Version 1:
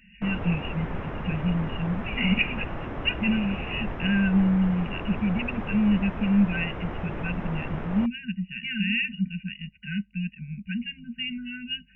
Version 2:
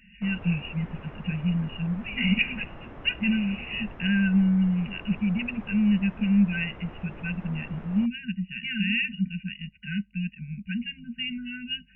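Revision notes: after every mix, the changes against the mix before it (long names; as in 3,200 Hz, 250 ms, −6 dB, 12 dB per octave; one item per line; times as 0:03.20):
background −9.5 dB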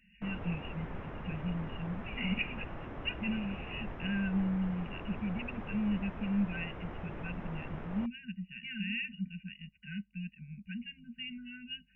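speech −10.5 dB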